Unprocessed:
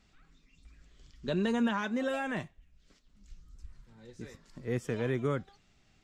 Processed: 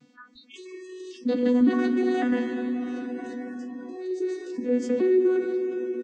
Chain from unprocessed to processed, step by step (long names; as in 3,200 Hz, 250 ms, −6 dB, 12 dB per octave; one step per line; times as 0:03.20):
vocoder with an arpeggio as carrier bare fifth, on B3, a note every 555 ms
shaped tremolo saw down 5.6 Hz, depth 35%
parametric band 300 Hz +12 dB 1.1 octaves
dense smooth reverb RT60 4.2 s, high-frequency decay 0.9×, DRR 8.5 dB
noise reduction from a noise print of the clip's start 30 dB
high-shelf EQ 3,200 Hz +9 dB
double-tracking delay 14 ms −6 dB
envelope flattener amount 50%